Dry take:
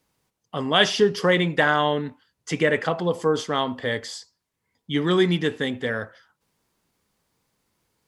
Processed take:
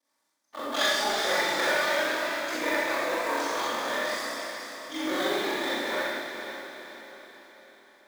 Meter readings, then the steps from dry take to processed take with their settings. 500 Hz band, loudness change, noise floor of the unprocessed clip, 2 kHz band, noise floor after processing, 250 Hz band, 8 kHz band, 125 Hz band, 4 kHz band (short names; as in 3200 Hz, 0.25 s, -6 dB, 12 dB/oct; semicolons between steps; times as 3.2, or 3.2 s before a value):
-6.5 dB, -5.5 dB, -80 dBFS, -2.0 dB, -76 dBFS, -9.5 dB, +2.5 dB, -25.5 dB, -3.0 dB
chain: minimum comb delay 3.4 ms; bell 2800 Hz -10 dB 0.39 oct; echoes that change speed 0.381 s, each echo +1 st, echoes 3, each echo -6 dB; ring modulator 23 Hz; weighting filter A; in parallel at -3 dB: compressor, threshold -36 dBFS, peak gain reduction 17.5 dB; on the sum: short-mantissa float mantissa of 2-bit; diffused feedback echo 0.472 s, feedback 49%, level -8 dB; Schroeder reverb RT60 1.2 s, combs from 28 ms, DRR -7.5 dB; gain -8.5 dB